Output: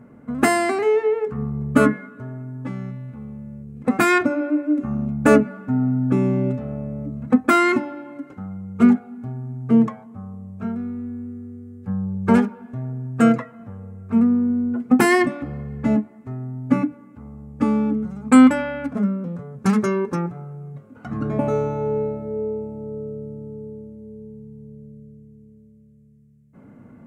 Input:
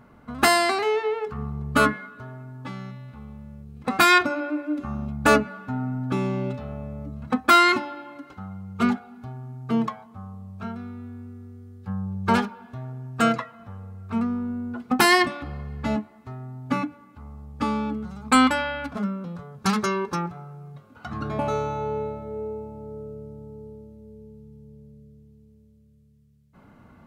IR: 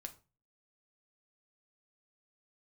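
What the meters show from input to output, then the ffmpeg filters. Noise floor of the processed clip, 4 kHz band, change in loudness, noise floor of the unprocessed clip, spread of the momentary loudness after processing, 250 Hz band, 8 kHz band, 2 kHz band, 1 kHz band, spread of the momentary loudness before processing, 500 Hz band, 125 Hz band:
-48 dBFS, -9.0 dB, +3.0 dB, -54 dBFS, 20 LU, +8.5 dB, -1.5 dB, -1.5 dB, -2.0 dB, 22 LU, +5.0 dB, +5.5 dB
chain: -af "equalizer=f=125:t=o:w=1:g=10,equalizer=f=250:t=o:w=1:g=12,equalizer=f=500:t=o:w=1:g=10,equalizer=f=2k:t=o:w=1:g=7,equalizer=f=4k:t=o:w=1:g=-8,equalizer=f=8k:t=o:w=1:g=7,volume=-6.5dB"

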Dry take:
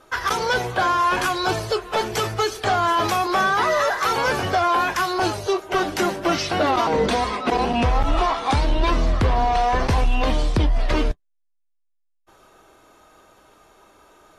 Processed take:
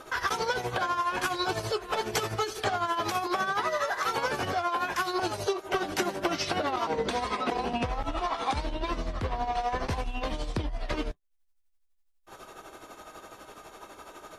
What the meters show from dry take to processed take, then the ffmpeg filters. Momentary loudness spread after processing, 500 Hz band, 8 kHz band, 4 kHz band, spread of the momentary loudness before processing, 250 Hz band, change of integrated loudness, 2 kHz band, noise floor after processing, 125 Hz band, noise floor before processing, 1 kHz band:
18 LU, -8.5 dB, -6.5 dB, -7.5 dB, 4 LU, -9.5 dB, -9.0 dB, -8.0 dB, -67 dBFS, -12.0 dB, -68 dBFS, -9.0 dB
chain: -af "acompressor=threshold=-32dB:ratio=12,tremolo=f=12:d=0.6,lowshelf=f=120:g=-5,volume=8.5dB"

